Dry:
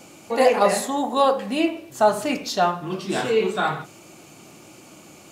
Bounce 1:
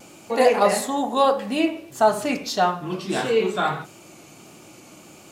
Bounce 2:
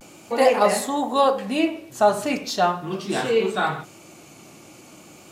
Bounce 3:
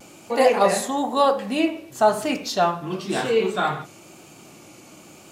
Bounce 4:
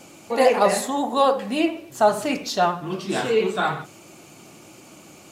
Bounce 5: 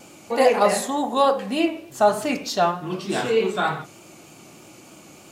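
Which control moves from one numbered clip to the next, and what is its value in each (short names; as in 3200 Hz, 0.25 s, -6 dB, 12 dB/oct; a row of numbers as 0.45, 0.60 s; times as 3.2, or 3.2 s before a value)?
vibrato, rate: 1.6, 0.39, 1, 13, 3.3 Hz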